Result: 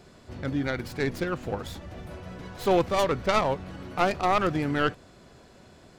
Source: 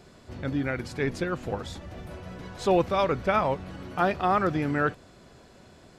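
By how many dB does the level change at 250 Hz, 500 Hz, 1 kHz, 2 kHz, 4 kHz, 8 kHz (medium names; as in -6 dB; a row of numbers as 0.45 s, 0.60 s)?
0.0 dB, 0.0 dB, 0.0 dB, +0.5 dB, +4.0 dB, +4.0 dB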